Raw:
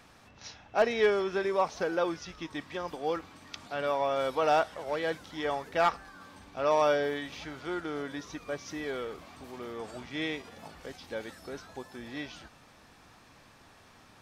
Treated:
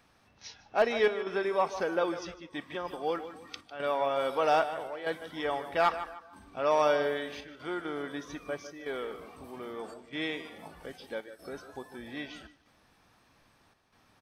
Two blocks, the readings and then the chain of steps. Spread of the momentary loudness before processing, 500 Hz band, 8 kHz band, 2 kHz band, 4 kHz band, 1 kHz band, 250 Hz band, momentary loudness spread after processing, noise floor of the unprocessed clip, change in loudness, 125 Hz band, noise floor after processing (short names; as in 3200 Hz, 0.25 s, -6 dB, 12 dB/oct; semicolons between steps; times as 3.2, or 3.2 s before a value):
20 LU, -0.5 dB, -3.0 dB, 0.0 dB, -0.5 dB, 0.0 dB, -1.5 dB, 19 LU, -58 dBFS, -0.5 dB, -3.5 dB, -65 dBFS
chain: dynamic EQ 110 Hz, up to -4 dB, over -47 dBFS, Q 0.71; chopper 0.79 Hz, depth 60%, duty 85%; notch 7200 Hz, Q 6.6; feedback echo 0.151 s, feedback 35%, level -12 dB; spectral noise reduction 8 dB